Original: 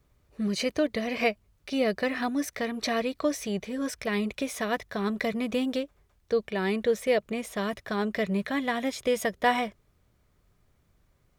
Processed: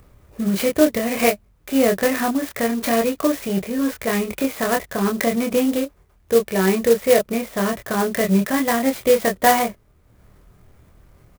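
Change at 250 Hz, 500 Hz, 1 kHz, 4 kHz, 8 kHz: +9.0 dB, +9.5 dB, +9.0 dB, +5.5 dB, +12.0 dB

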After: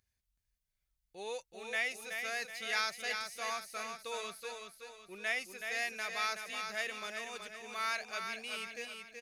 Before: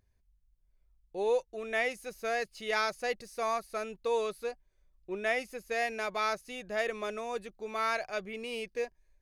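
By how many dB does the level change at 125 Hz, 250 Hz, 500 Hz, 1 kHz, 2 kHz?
no reading, -10.5 dB, -12.0 dB, -6.0 dB, -1.0 dB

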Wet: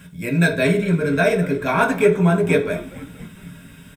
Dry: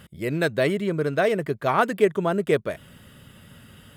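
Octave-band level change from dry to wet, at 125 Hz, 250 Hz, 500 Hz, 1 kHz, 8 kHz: +9.5 dB, +7.5 dB, +3.5 dB, +2.0 dB, +8.0 dB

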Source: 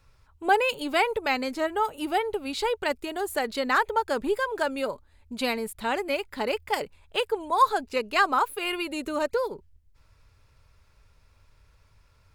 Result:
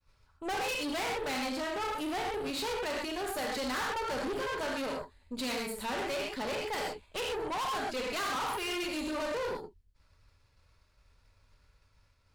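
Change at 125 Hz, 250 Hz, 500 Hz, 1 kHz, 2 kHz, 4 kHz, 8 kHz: no reading, -4.5 dB, -7.5 dB, -9.0 dB, -7.5 dB, -3.5 dB, 0.0 dB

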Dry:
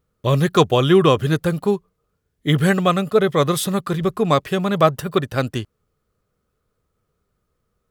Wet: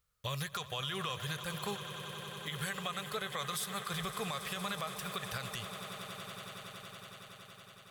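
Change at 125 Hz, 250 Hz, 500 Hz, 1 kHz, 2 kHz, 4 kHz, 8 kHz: -22.5 dB, -25.0 dB, -26.0 dB, -17.5 dB, -12.5 dB, -10.5 dB, -9.5 dB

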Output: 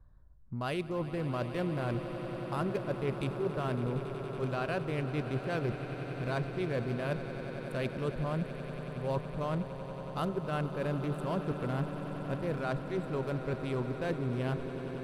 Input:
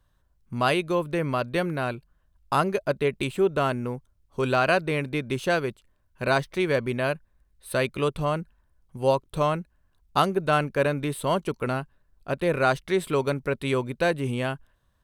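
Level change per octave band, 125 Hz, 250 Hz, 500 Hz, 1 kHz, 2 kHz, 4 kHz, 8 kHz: -3.0 dB, -5.5 dB, -9.5 dB, -11.5 dB, -12.5 dB, -12.5 dB, under -15 dB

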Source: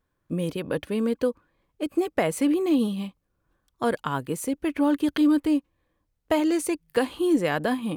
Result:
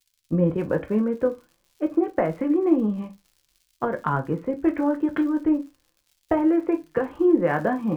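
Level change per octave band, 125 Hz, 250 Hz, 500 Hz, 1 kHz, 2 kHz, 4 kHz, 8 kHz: +5.5 dB, +1.5 dB, +2.5 dB, +2.0 dB, -1.0 dB, under -15 dB, under -20 dB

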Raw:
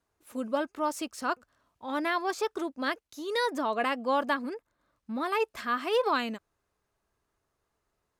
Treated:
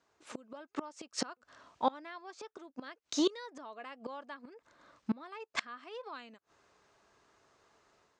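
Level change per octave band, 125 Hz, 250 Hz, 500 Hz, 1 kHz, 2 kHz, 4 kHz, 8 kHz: no reading, -5.0 dB, -11.0 dB, -10.5 dB, -12.5 dB, -5.0 dB, -0.5 dB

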